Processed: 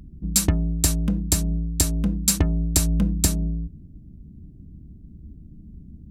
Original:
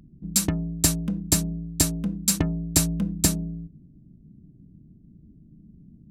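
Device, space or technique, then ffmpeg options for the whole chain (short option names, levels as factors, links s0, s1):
car stereo with a boomy subwoofer: -af "lowshelf=f=100:t=q:w=1.5:g=8,alimiter=limit=0.282:level=0:latency=1:release=206,volume=1.78"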